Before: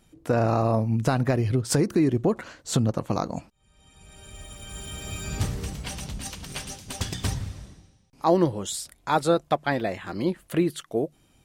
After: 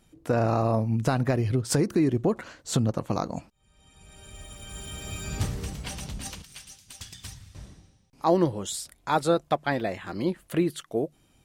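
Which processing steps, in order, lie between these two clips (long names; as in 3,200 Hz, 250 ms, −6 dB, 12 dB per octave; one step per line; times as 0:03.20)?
0:06.42–0:07.55: guitar amp tone stack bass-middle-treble 5-5-5
level −1.5 dB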